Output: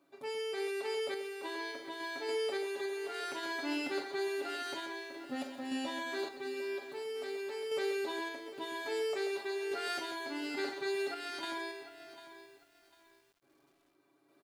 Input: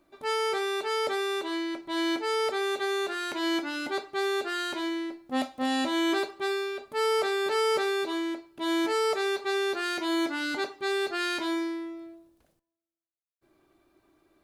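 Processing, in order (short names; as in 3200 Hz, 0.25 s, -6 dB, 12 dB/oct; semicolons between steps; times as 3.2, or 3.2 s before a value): limiter -27.5 dBFS, peak gain reduction 10.5 dB; HPF 150 Hz; comb 7.2 ms, depth 73%; tapped delay 41/134 ms -7.5/-7 dB; random-step tremolo, depth 55%; lo-fi delay 0.748 s, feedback 35%, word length 9-bit, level -14 dB; gain -3 dB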